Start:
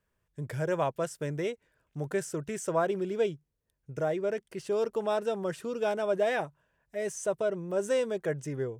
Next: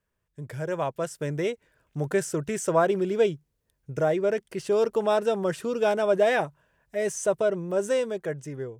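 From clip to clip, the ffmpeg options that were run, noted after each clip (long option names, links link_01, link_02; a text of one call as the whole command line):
ffmpeg -i in.wav -af "dynaudnorm=framelen=260:gausssize=9:maxgain=7.5dB,volume=-1.5dB" out.wav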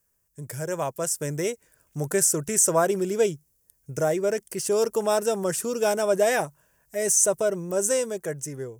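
ffmpeg -i in.wav -af "aexciter=amount=7:drive=3.9:freq=5300" out.wav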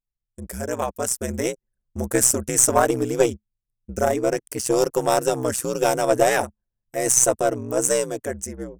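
ffmpeg -i in.wav -af "aeval=exprs='val(0)*sin(2*PI*63*n/s)':channel_layout=same,anlmdn=0.00631,aeval=exprs='0.422*(cos(1*acos(clip(val(0)/0.422,-1,1)))-cos(1*PI/2))+0.0211*(cos(4*acos(clip(val(0)/0.422,-1,1)))-cos(4*PI/2))+0.0133*(cos(7*acos(clip(val(0)/0.422,-1,1)))-cos(7*PI/2))':channel_layout=same,volume=7dB" out.wav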